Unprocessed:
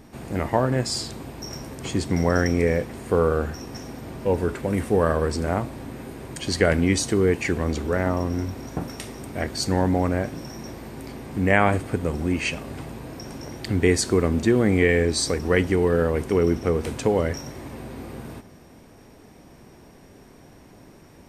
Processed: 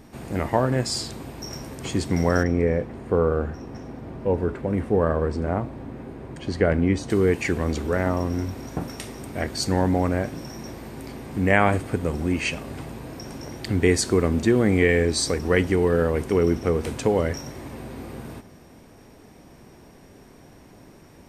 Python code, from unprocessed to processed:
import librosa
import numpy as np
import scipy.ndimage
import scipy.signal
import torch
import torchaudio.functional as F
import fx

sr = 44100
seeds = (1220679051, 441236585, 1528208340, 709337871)

y = fx.lowpass(x, sr, hz=1200.0, slope=6, at=(2.43, 7.1))